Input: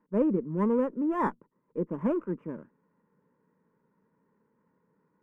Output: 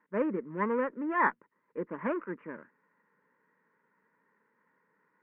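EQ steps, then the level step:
low-pass with resonance 1,900 Hz, resonance Q 2.9
spectral tilt +3.5 dB per octave
parametric band 150 Hz −2.5 dB 0.43 octaves
0.0 dB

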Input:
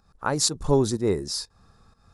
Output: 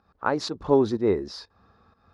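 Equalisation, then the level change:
high-pass filter 90 Hz 12 dB per octave
high-frequency loss of the air 280 metres
parametric band 140 Hz −10.5 dB 0.73 octaves
+3.0 dB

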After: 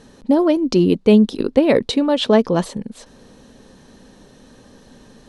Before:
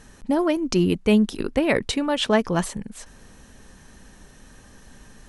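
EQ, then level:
octave-band graphic EQ 125/250/500/1,000/4,000 Hz +6/+10/+12/+5/+11 dB
−6.0 dB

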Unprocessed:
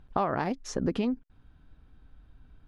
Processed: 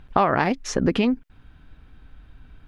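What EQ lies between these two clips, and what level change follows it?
parametric band 2,300 Hz +6.5 dB 1.4 octaves
+7.5 dB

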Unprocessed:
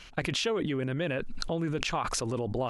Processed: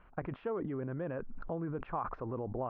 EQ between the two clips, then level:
transistor ladder low-pass 1,500 Hz, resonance 30%
high-frequency loss of the air 120 metres
0.0 dB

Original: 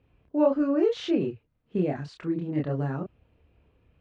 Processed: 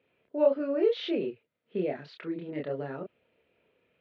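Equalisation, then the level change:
loudspeaker in its box 270–3,700 Hz, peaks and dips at 300 Hz −7 dB, 790 Hz −9 dB, 1,100 Hz −10 dB, 1,600 Hz −4 dB, 2,800 Hz −4 dB
dynamic equaliser 1,500 Hz, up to −4 dB, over −46 dBFS, Q 1
low-shelf EQ 360 Hz −9 dB
+5.5 dB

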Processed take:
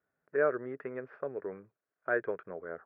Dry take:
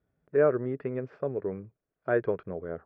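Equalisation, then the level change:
parametric band 1,600 Hz +10 dB 1.2 octaves
dynamic equaliser 1,000 Hz, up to −4 dB, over −37 dBFS, Q 1.3
resonant band-pass 870 Hz, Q 0.5
−4.5 dB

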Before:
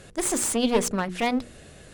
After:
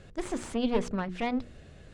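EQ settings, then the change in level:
dynamic equaliser 7,000 Hz, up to −5 dB, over −38 dBFS, Q 0.88
high-frequency loss of the air 92 metres
low-shelf EQ 140 Hz +8.5 dB
−6.5 dB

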